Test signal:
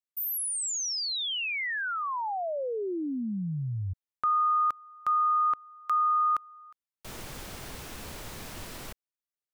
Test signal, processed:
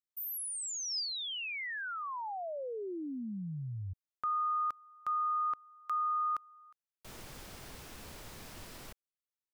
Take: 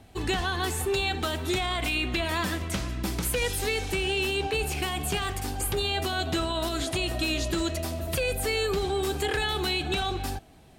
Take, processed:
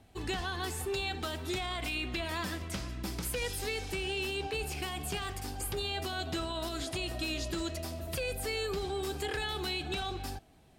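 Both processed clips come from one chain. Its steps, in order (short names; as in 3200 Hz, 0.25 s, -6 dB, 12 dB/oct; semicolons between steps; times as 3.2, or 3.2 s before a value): dynamic EQ 5000 Hz, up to +5 dB, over -54 dBFS, Q 5.4; gain -7.5 dB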